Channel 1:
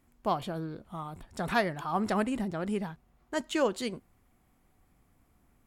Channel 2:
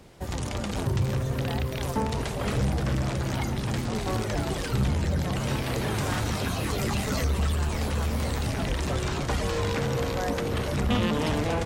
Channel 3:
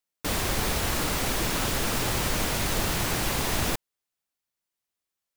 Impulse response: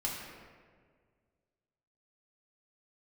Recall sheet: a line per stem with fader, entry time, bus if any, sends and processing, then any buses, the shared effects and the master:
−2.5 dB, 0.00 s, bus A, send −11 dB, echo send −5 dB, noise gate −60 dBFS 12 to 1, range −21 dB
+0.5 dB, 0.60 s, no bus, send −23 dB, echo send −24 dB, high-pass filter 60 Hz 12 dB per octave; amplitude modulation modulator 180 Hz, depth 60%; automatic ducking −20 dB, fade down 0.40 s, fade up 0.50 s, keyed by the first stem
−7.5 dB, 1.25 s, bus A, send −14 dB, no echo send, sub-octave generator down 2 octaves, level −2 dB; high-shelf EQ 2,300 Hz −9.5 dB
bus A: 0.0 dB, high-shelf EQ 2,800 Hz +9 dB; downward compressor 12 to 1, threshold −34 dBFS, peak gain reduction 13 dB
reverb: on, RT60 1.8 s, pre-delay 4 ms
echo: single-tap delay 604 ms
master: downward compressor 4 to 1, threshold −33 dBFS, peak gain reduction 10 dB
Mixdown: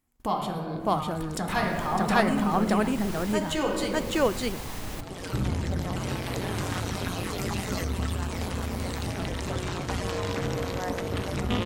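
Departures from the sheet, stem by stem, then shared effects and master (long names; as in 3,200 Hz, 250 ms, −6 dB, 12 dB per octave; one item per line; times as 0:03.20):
stem 1 −2.5 dB → +8.5 dB
master: missing downward compressor 4 to 1, threshold −33 dBFS, peak gain reduction 10 dB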